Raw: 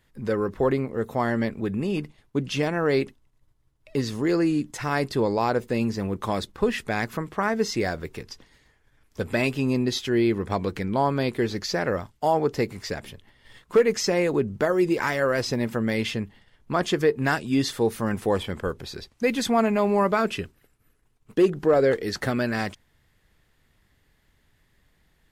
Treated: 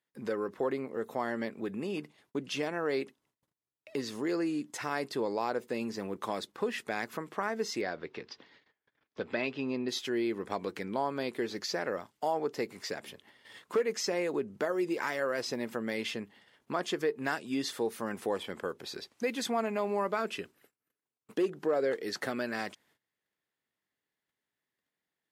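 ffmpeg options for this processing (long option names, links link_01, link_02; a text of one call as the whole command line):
ffmpeg -i in.wav -filter_complex "[0:a]asettb=1/sr,asplit=3[link_01][link_02][link_03];[link_01]atrim=end=7.814[link_04];[link_02]atrim=start=7.81:end=9.89,asetpts=PTS-STARTPTS,afade=type=in:duration=0.004:curve=qsin,afade=type=out:start_time=2.076:duration=0.004:curve=qsin,lowpass=frequency=4600:width=0.5412,lowpass=frequency=4600:width=1.3066[link_05];[link_03]atrim=start=9.886[link_06];[link_04][link_05]acrossfade=duration=0.004:curve1=hsin:curve2=qsin[link_07];[link_07][link_06]acrossfade=duration=0.004:curve1=qsin:curve2=hsin,agate=range=-20dB:threshold=-58dB:ratio=16:detection=peak,highpass=260,acompressor=threshold=-43dB:ratio=1.5" out.wav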